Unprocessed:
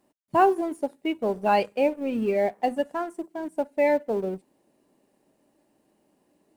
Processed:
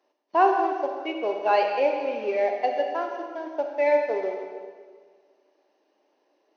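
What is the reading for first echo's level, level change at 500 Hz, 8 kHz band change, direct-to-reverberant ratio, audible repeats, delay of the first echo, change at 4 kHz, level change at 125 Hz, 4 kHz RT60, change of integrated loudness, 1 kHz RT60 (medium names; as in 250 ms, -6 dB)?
no echo, +1.0 dB, no reading, 2.5 dB, no echo, no echo, +1.5 dB, no reading, 1.5 s, +0.5 dB, 1.7 s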